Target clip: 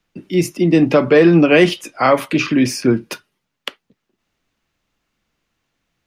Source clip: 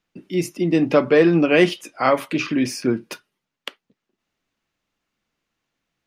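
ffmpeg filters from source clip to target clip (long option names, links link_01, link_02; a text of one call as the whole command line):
ffmpeg -i in.wav -filter_complex "[0:a]acrossover=split=120|950|2600[link_01][link_02][link_03][link_04];[link_01]acontrast=35[link_05];[link_05][link_02][link_03][link_04]amix=inputs=4:normalize=0,alimiter=level_in=6.5dB:limit=-1dB:release=50:level=0:latency=1,volume=-1dB" out.wav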